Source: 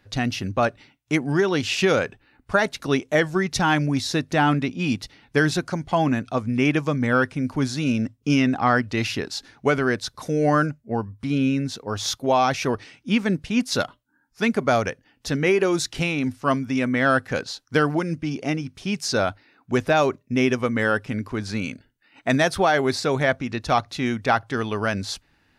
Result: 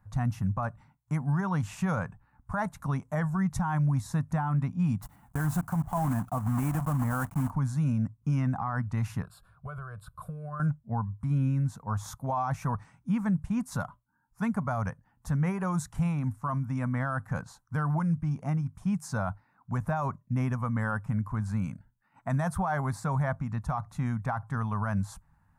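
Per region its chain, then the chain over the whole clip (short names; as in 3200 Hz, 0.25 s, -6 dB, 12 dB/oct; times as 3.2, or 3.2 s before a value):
5.02–7.52 block floating point 3-bit + small resonant body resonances 290/710/2900 Hz, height 7 dB, ringing for 25 ms
9.22–10.6 compressor 16:1, threshold -25 dBFS + fixed phaser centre 1300 Hz, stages 8
whole clip: EQ curve 180 Hz 0 dB, 360 Hz -26 dB, 1000 Hz -1 dB, 2900 Hz -28 dB, 4900 Hz -27 dB, 7700 Hz -11 dB, 11000 Hz -9 dB; limiter -23 dBFS; gain +2.5 dB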